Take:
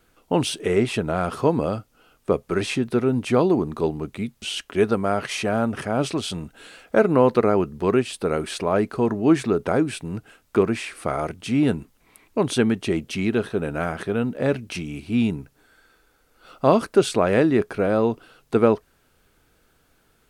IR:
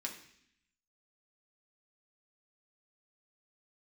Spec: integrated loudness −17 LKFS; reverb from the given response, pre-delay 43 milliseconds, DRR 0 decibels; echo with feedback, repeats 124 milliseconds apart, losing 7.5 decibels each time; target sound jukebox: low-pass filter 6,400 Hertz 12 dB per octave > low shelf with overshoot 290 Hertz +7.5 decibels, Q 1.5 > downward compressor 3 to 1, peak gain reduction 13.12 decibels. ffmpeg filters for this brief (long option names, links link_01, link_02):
-filter_complex "[0:a]aecho=1:1:124|248|372|496|620:0.422|0.177|0.0744|0.0312|0.0131,asplit=2[link_01][link_02];[1:a]atrim=start_sample=2205,adelay=43[link_03];[link_02][link_03]afir=irnorm=-1:irlink=0,volume=0.5dB[link_04];[link_01][link_04]amix=inputs=2:normalize=0,lowpass=6400,lowshelf=frequency=290:width_type=q:width=1.5:gain=7.5,acompressor=threshold=-21dB:ratio=3,volume=6dB"